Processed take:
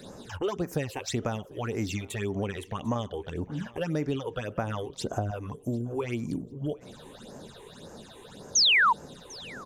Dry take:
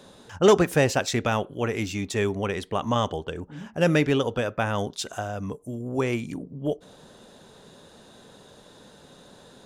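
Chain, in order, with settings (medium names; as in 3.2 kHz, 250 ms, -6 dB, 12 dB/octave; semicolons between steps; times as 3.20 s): 4.89–5.31 s: tilt shelf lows +8 dB; compression 5:1, threshold -33 dBFS, peak gain reduction 18 dB; phase shifter stages 8, 1.8 Hz, lowest notch 180–3600 Hz; 8.55–8.93 s: painted sound fall 870–6800 Hz -26 dBFS; feedback delay 746 ms, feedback 21%, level -23 dB; trim +5.5 dB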